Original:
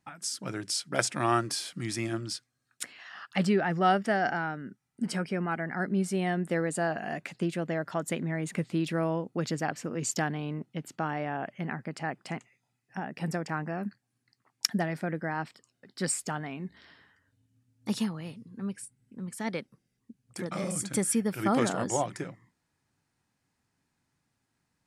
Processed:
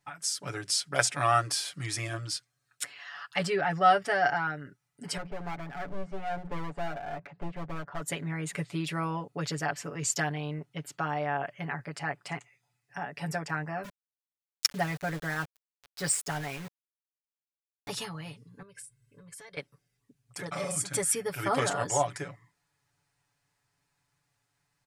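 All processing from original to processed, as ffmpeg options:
-filter_complex "[0:a]asettb=1/sr,asplit=3[a][b][c];[a]atrim=end=5.174[d];[b]atrim=start=5.17:end=8.01,asetpts=PTS-STARTPTS,afade=t=in:d=0.004:c=qsin,afade=t=out:st=2.836:d=0.004:c=qsin,lowpass=1.1k,bandreject=f=60:t=h:w=6,bandreject=f=120:t=h:w=6,bandreject=f=180:t=h:w=6,aeval=exprs='clip(val(0),-1,0.0126)':c=same[e];[c]atrim=start=8.006[f];[d][e]acrossfade=d=0.004:c1=hsin:c2=qsin[g];[g][f]acrossfade=d=0.004:c1=qsin:c2=hsin,asettb=1/sr,asplit=3[h][i][j];[h]atrim=end=13.844[k];[i]atrim=start=13.84:end=17.88,asetpts=PTS-STARTPTS,afade=t=in:d=0.004:c=qsin,afade=t=out:st=4.036:d=0.004:c=qsin,lowshelf=f=85:g=8.5,aeval=exprs='val(0)*gte(abs(val(0)),0.0112)':c=same[l];[j]atrim=start=17.876[m];[k][l]acrossfade=d=0.004:c1=hsin:c2=qsin[n];[n][m]acrossfade=d=0.004:c1=qsin:c2=hsin,asettb=1/sr,asplit=3[o][p][q];[o]atrim=end=18.624[r];[p]atrim=start=18.62:end=19.57,asetpts=PTS-STARTPTS,afade=t=in:d=0.004:c=qsin,afade=t=out:st=0.946:d=0.004:c=qsin,equalizer=f=800:w=2.9:g=-7.5,aecho=1:1:1.9:0.55,atrim=end_sample=41895,acompressor=threshold=-44dB:ratio=16:attack=3.2:release=140:knee=1:detection=peak[s];[q]atrim=start=19.566[t];[r][s]acrossfade=d=0.004:c1=hsin:c2=qsin[u];[u][t]acrossfade=d=0.004:c1=qsin:c2=hsin,equalizer=f=240:w=1.3:g=-13,aecho=1:1:7:0.93"

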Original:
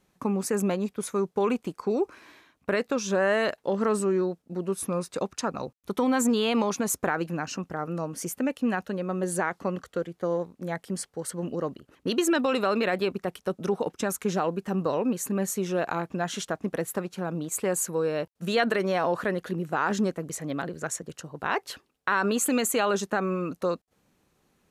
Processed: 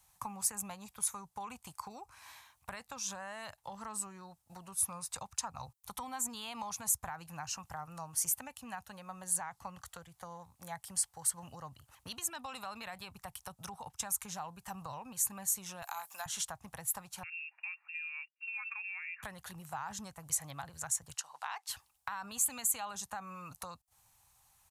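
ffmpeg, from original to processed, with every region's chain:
-filter_complex "[0:a]asettb=1/sr,asplit=3[a][b][c];[a]atrim=end=15.824[d];[b]atrim=start=15.82:end=16.26,asetpts=PTS-STARTPTS,afade=t=in:d=0.004:c=qsin,afade=t=out:st=0.436:d=0.004:c=qsin,highpass=650,aemphasis=mode=production:type=75fm[e];[c]atrim=start=16.256[f];[d][e]acrossfade=d=0.004:c1=hsin:c2=qsin[g];[g][f]acrossfade=d=0.004:c1=qsin:c2=hsin,asettb=1/sr,asplit=3[h][i][j];[h]atrim=end=17.234[k];[i]atrim=start=17.23:end=19.23,asetpts=PTS-STARTPTS,afade=t=in:d=0.004:c=qsin,afade=t=out:st=1.996:d=0.004:c=qsin,lowpass=f=2.5k:t=q:w=0.5098,lowpass=f=2.5k:t=q:w=0.6013,lowpass=f=2.5k:t=q:w=0.9,lowpass=f=2.5k:t=q:w=2.563,afreqshift=-2900,aderivative[l];[j]atrim=start=19.226[m];[k][l]acrossfade=d=0.004:c1=hsin:c2=qsin[n];[n][m]acrossfade=d=0.004:c1=qsin:c2=hsin,asettb=1/sr,asplit=3[o][p][q];[o]atrim=end=21.144[r];[p]atrim=start=21.14:end=21.69,asetpts=PTS-STARTPTS,afade=t=in:d=0.004:c=qsin,afade=t=out:st=0.546:d=0.004:c=qsin,highpass=740,lowpass=4.1k,aemphasis=mode=production:type=75fm[s];[q]atrim=start=21.686[t];[r][s]acrossfade=d=0.004:c1=hsin:c2=qsin[u];[u][t]acrossfade=d=0.004:c1=qsin:c2=hsin,acrossover=split=260[v][w];[w]acompressor=threshold=-37dB:ratio=6[x];[v][x]amix=inputs=2:normalize=0,firequalizer=gain_entry='entry(110,0);entry(180,-19);entry(370,-27);entry(820,4);entry(1400,-4);entry(8700,11)':delay=0.05:min_phase=1"

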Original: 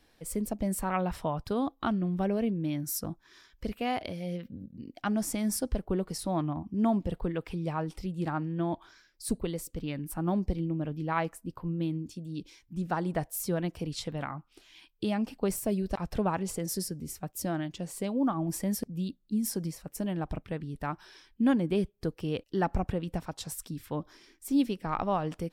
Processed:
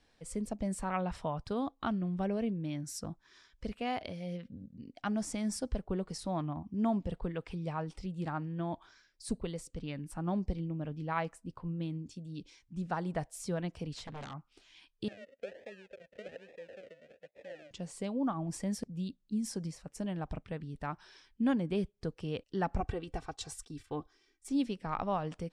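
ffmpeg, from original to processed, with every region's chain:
-filter_complex "[0:a]asettb=1/sr,asplit=3[a][b][c];[a]atrim=end=13.944[d];[b]atrim=start=13.94:end=14.34,asetpts=PTS-STARTPTS,afade=t=in:d=0.004:c=qsin,afade=t=out:st=0.396:d=0.004:c=qsin,aeval=exprs='0.0211*(abs(mod(val(0)/0.0211+3,4)-2)-1)':c=same,highshelf=f=6.9k:g=-6.5[e];[c]atrim=start=14.336[f];[d][e]acrossfade=d=0.004:c1=hsin:c2=qsin[g];[g][f]acrossfade=d=0.004:c1=qsin:c2=hsin,asettb=1/sr,asplit=3[h][i][j];[h]atrim=end=15.084[k];[i]atrim=start=15.08:end=17.71,asetpts=PTS-STARTPTS,afade=t=in:d=0.004:c=qsin,afade=t=out:st=2.626:d=0.004:c=qsin,acrusher=samples=42:mix=1:aa=0.000001:lfo=1:lforange=25.2:lforate=1.2,asplit=3[l][m][n];[l]bandpass=f=530:t=q:w=8,volume=0dB[o];[m]bandpass=f=1.84k:t=q:w=8,volume=-6dB[p];[n]bandpass=f=2.48k:t=q:w=8,volume=-9dB[q];[o][p][q]amix=inputs=3:normalize=0,highshelf=f=6.4k:g=5[r];[j]atrim=start=17.706[s];[k][r]acrossfade=d=0.004:c1=hsin:c2=qsin[t];[t][s]acrossfade=d=0.004:c1=qsin:c2=hsin,asettb=1/sr,asplit=3[u][v][w];[u]atrim=end=22.804[x];[v]atrim=start=22.8:end=24.49,asetpts=PTS-STARTPTS,afade=t=in:d=0.004:c=qsin,afade=t=out:st=1.686:d=0.004:c=qsin,agate=range=-11dB:threshold=-50dB:ratio=16:release=100:detection=peak,aecho=1:1:2.6:0.74,atrim=end_sample=74529[y];[w]atrim=start=24.486[z];[x][y]acrossfade=d=0.004:c1=hsin:c2=qsin[aa];[aa][z]acrossfade=d=0.004:c1=qsin:c2=hsin,lowpass=f=8.8k:w=0.5412,lowpass=f=8.8k:w=1.3066,equalizer=f=330:w=5:g=-5,volume=-4dB"

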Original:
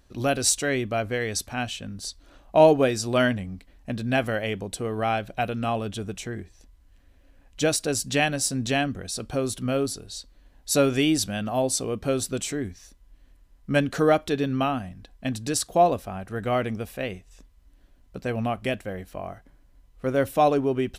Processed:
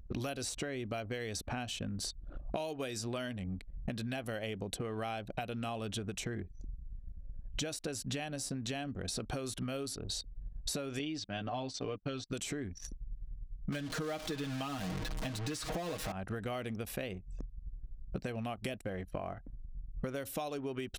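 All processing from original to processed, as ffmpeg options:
-filter_complex "[0:a]asettb=1/sr,asplit=3[a][b][c];[a]atrim=end=10.994[d];[b]atrim=start=10.99:end=12.3,asetpts=PTS-STARTPTS,afade=t=in:d=0.004:c=qsin,afade=t=out:st=1.306:d=0.004:c=qsin,lowpass=f=5.1k:w=0.5412,lowpass=f=5.1k:w=1.3066,agate=range=-33dB:threshold=-27dB:ratio=3:release=100:detection=peak,aecho=1:1:6.8:0.57,atrim=end_sample=57771[e];[c]atrim=start=12.296[f];[d][e]acrossfade=d=0.004:c1=hsin:c2=qsin[g];[g][f]acrossfade=d=0.004:c1=qsin:c2=hsin,asettb=1/sr,asplit=3[h][i][j];[h]atrim=end=13.724[k];[i]atrim=start=13.72:end=16.12,asetpts=PTS-STARTPTS,afade=t=in:d=0.004:c=qsin,afade=t=out:st=2.396:d=0.004:c=qsin,aeval=exprs='val(0)+0.5*0.0531*sgn(val(0))':c=same,highshelf=f=6.7k:g=-11.5,aecho=1:1:6.4:0.79,atrim=end_sample=105840[l];[j]atrim=start=16.116[m];[k][l]acrossfade=d=0.004:c1=hsin:c2=qsin[n];[n][m]acrossfade=d=0.004:c1=qsin:c2=hsin,acrossover=split=1200|3200[o][p][q];[o]acompressor=threshold=-35dB:ratio=4[r];[p]acompressor=threshold=-46dB:ratio=4[s];[q]acompressor=threshold=-42dB:ratio=4[t];[r][s][t]amix=inputs=3:normalize=0,anlmdn=0.0158,acompressor=threshold=-49dB:ratio=8,volume=13dB"

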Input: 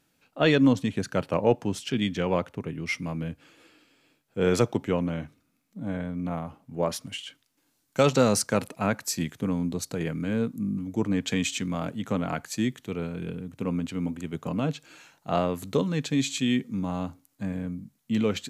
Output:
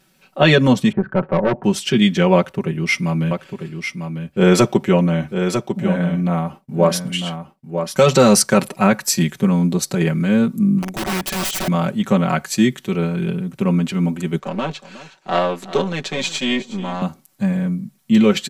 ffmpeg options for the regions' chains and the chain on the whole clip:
-filter_complex "[0:a]asettb=1/sr,asplit=3[a][b][c];[a]atrim=end=0.924[d];[b]atrim=start=0.92:end=1.64,asetpts=PTS-STARTPTS,afade=t=in:d=0.004:c=qsin,afade=t=out:st=0.716:d=0.004:c=qsin,lowpass=f=1.5k:w=0.5412,lowpass=f=1.5k:w=1.3066,aeval=exprs='(tanh(11.2*val(0)+0.25)-tanh(0.25))/11.2':c=same[e];[c]atrim=start=1.636[f];[d][e]acrossfade=d=0.004:c1=hsin:c2=qsin[g];[g][f]acrossfade=d=0.004:c1=qsin:c2=hsin,asettb=1/sr,asplit=3[h][i][j];[h]atrim=end=2.364[k];[i]atrim=start=2.36:end=8.02,asetpts=PTS-STARTPTS,afade=t=in:d=0.004:c=qsin,afade=t=out:st=5.656:d=0.004:c=qsin,agate=range=-33dB:threshold=-53dB:ratio=3:release=100:detection=peak,aecho=1:1:948:0.422,atrim=end_sample=249606[l];[j]atrim=start=8.016[m];[k][l]acrossfade=d=0.004:c1=hsin:c2=qsin[n];[n][m]acrossfade=d=0.004:c1=qsin:c2=hsin,asettb=1/sr,asplit=3[o][p][q];[o]atrim=end=10.824[r];[p]atrim=start=10.82:end=11.68,asetpts=PTS-STARTPTS,afade=t=in:d=0.004:c=qsin,afade=t=out:st=0.856:d=0.004:c=qsin,aeval=exprs='(tanh(25.1*val(0)+0.1)-tanh(0.1))/25.1':c=same,aeval=exprs='(mod(31.6*val(0)+1,2)-1)/31.6':c=same[s];[q]atrim=start=11.676[t];[r][s]acrossfade=d=0.004:c1=hsin:c2=qsin[u];[u][t]acrossfade=d=0.004:c1=qsin:c2=hsin,asettb=1/sr,asplit=3[v][w][x];[v]atrim=end=14.394[y];[w]atrim=start=14.39:end=17.02,asetpts=PTS-STARTPTS,afade=t=in:d=0.004:c=qsin,afade=t=out:st=2.626:d=0.004:c=qsin,aeval=exprs='if(lt(val(0),0),0.447*val(0),val(0))':c=same,acrossover=split=240 7700:gain=0.2 1 0.112[z][aa][ab];[z][aa][ab]amix=inputs=3:normalize=0,aecho=1:1:365:0.15,atrim=end_sample=115983[ac];[x]atrim=start=17.016[ad];[y][ac]acrossfade=d=0.004:c1=hsin:c2=qsin[ae];[ae][ad]acrossfade=d=0.004:c1=qsin:c2=hsin,bandreject=f=6.7k:w=25,aecho=1:1:5.3:0.86,alimiter=level_in=10dB:limit=-1dB:release=50:level=0:latency=1,volume=-1dB"

